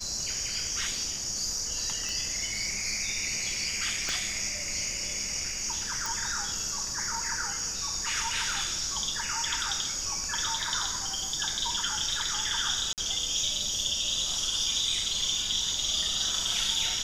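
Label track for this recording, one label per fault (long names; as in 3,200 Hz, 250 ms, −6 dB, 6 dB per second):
2.090000	2.090000	click
4.090000	4.090000	click −17 dBFS
6.060000	6.060000	click
12.930000	12.980000	drop-out 48 ms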